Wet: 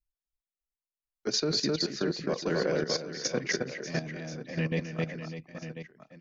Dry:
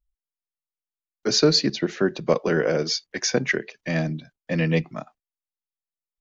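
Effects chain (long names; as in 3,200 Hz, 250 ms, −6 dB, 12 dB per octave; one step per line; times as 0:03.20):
reverse bouncing-ball delay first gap 260 ms, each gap 1.3×, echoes 5
output level in coarse steps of 11 dB
level −5.5 dB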